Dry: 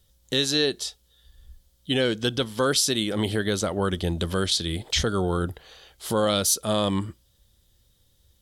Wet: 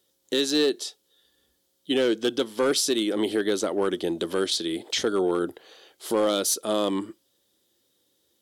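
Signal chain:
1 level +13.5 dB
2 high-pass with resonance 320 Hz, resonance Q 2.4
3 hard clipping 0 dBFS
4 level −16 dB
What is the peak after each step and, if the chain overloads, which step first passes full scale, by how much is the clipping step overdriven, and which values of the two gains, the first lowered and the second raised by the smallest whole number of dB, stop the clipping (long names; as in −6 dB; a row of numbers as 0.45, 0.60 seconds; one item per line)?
+4.5, +5.5, 0.0, −16.0 dBFS
step 1, 5.5 dB
step 1 +7.5 dB, step 4 −10 dB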